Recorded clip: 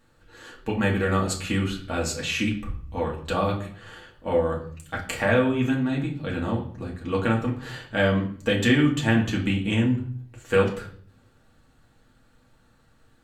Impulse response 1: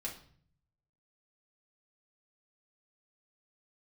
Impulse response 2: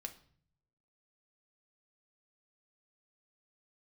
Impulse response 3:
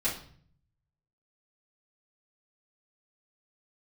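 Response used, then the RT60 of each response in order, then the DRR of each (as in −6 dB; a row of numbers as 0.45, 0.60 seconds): 1; 0.50, 0.55, 0.50 seconds; −3.0, 5.5, −9.5 decibels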